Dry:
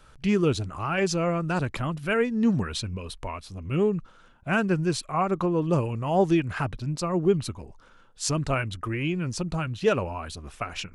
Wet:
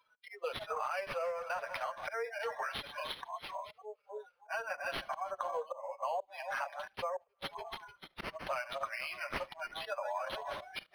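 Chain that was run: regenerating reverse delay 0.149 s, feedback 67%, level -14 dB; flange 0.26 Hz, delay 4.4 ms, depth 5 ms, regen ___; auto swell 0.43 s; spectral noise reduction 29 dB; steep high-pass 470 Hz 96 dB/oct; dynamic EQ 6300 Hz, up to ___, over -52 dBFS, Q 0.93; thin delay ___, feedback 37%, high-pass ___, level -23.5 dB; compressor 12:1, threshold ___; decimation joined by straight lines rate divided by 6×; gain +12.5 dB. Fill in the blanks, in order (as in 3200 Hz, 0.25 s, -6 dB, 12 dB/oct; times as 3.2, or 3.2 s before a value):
+8%, -3 dB, 74 ms, 3600 Hz, -46 dBFS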